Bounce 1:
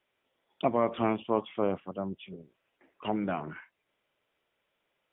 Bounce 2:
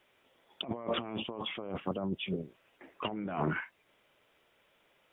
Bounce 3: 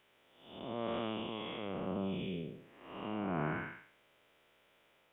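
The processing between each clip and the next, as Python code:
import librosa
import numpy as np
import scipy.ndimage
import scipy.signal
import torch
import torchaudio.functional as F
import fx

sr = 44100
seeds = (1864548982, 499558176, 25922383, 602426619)

y1 = fx.over_compress(x, sr, threshold_db=-39.0, ratio=-1.0)
y1 = y1 * 10.0 ** (2.5 / 20.0)
y2 = fx.spec_blur(y1, sr, span_ms=278.0)
y2 = y2 * 10.0 ** (1.5 / 20.0)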